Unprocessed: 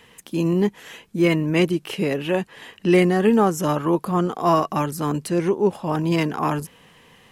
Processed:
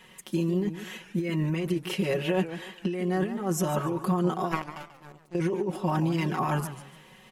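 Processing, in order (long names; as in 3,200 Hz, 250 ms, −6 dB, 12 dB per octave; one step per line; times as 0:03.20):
0:04.51–0:05.35: power curve on the samples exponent 3
compressor whose output falls as the input rises −23 dBFS, ratio −1
comb filter 5.4 ms, depth 97%
feedback echo with a swinging delay time 145 ms, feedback 32%, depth 203 cents, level −12 dB
level −8 dB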